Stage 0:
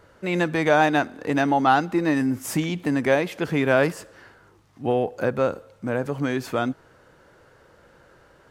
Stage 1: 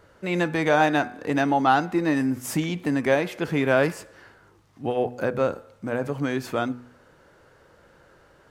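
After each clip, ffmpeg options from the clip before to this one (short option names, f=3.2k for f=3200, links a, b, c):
-af "bandreject=f=122.5:t=h:w=4,bandreject=f=245:t=h:w=4,bandreject=f=367.5:t=h:w=4,bandreject=f=490:t=h:w=4,bandreject=f=612.5:t=h:w=4,bandreject=f=735:t=h:w=4,bandreject=f=857.5:t=h:w=4,bandreject=f=980:t=h:w=4,bandreject=f=1.1025k:t=h:w=4,bandreject=f=1.225k:t=h:w=4,bandreject=f=1.3475k:t=h:w=4,bandreject=f=1.47k:t=h:w=4,bandreject=f=1.5925k:t=h:w=4,bandreject=f=1.715k:t=h:w=4,bandreject=f=1.8375k:t=h:w=4,bandreject=f=1.96k:t=h:w=4,bandreject=f=2.0825k:t=h:w=4,bandreject=f=2.205k:t=h:w=4,bandreject=f=2.3275k:t=h:w=4,bandreject=f=2.45k:t=h:w=4,bandreject=f=2.5725k:t=h:w=4,volume=-1dB"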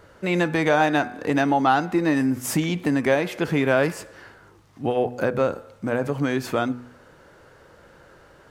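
-af "acompressor=threshold=-26dB:ratio=1.5,volume=4.5dB"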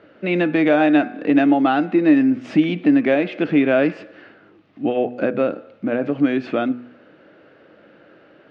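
-af "highpass=170,equalizer=f=210:t=q:w=4:g=6,equalizer=f=300:t=q:w=4:g=10,equalizer=f=630:t=q:w=4:g=5,equalizer=f=960:t=q:w=4:g=-9,equalizer=f=2.6k:t=q:w=4:g=5,lowpass=f=3.7k:w=0.5412,lowpass=f=3.7k:w=1.3066"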